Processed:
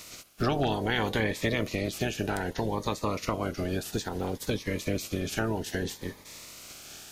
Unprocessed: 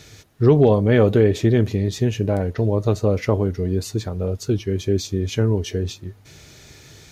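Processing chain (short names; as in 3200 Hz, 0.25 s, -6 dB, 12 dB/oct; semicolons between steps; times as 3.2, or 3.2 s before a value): spectral limiter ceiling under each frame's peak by 26 dB; compressor 2:1, threshold -31 dBFS, peak gain reduction 12 dB; cascading phaser rising 0.62 Hz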